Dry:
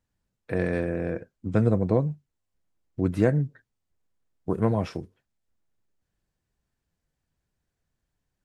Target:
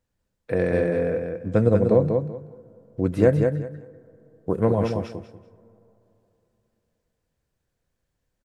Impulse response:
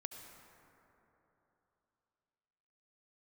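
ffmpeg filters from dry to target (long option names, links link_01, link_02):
-filter_complex "[0:a]equalizer=frequency=510:width=3.8:gain=7.5,aecho=1:1:191|382|573:0.562|0.124|0.0272,asplit=2[link_01][link_02];[1:a]atrim=start_sample=2205[link_03];[link_02][link_03]afir=irnorm=-1:irlink=0,volume=-14.5dB[link_04];[link_01][link_04]amix=inputs=2:normalize=0"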